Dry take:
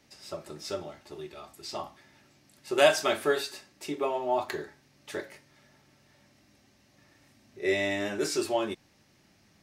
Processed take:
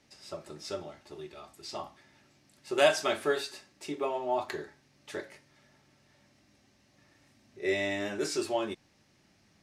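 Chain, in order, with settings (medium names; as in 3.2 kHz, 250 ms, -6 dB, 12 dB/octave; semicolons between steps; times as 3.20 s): low-pass 11 kHz 12 dB/octave; trim -2.5 dB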